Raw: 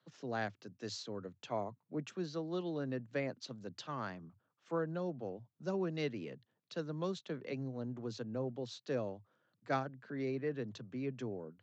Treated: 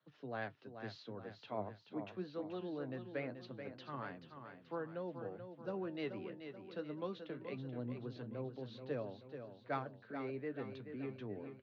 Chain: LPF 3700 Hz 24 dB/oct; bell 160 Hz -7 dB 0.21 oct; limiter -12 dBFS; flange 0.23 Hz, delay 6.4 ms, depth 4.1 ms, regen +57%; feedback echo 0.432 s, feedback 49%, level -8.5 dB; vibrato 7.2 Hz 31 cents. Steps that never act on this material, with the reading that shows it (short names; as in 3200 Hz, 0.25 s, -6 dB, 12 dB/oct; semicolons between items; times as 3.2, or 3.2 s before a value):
limiter -12 dBFS: input peak -21.0 dBFS